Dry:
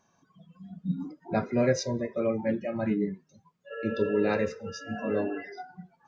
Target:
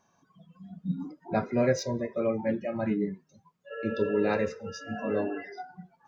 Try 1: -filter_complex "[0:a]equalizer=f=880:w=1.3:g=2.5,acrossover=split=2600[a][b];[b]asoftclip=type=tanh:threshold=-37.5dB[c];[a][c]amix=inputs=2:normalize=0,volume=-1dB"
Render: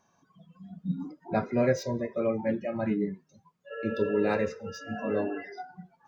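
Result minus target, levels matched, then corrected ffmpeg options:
soft clip: distortion +10 dB
-filter_complex "[0:a]equalizer=f=880:w=1.3:g=2.5,acrossover=split=2600[a][b];[b]asoftclip=type=tanh:threshold=-27dB[c];[a][c]amix=inputs=2:normalize=0,volume=-1dB"

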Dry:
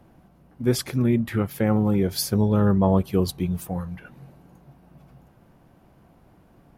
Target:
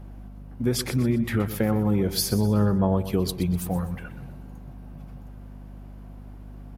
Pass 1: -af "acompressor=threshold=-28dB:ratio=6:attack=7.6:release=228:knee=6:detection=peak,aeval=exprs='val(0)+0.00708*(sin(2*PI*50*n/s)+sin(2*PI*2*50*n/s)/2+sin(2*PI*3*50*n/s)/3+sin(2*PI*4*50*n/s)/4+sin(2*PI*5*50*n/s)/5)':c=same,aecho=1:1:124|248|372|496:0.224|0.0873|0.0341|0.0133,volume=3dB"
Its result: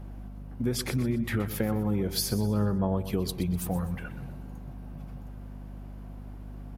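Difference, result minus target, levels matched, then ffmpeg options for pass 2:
compressor: peak gain reduction +5.5 dB
-af "acompressor=threshold=-21.5dB:ratio=6:attack=7.6:release=228:knee=6:detection=peak,aeval=exprs='val(0)+0.00708*(sin(2*PI*50*n/s)+sin(2*PI*2*50*n/s)/2+sin(2*PI*3*50*n/s)/3+sin(2*PI*4*50*n/s)/4+sin(2*PI*5*50*n/s)/5)':c=same,aecho=1:1:124|248|372|496:0.224|0.0873|0.0341|0.0133,volume=3dB"

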